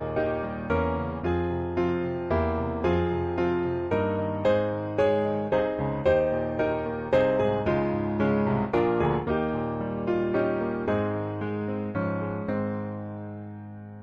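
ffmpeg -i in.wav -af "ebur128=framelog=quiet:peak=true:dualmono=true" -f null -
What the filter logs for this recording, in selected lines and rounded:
Integrated loudness:
  I:         -23.8 LUFS
  Threshold: -34.0 LUFS
Loudness range:
  LRA:         3.3 LU
  Threshold: -43.5 LUFS
  LRA low:   -25.6 LUFS
  LRA high:  -22.3 LUFS
True peak:
  Peak:      -12.7 dBFS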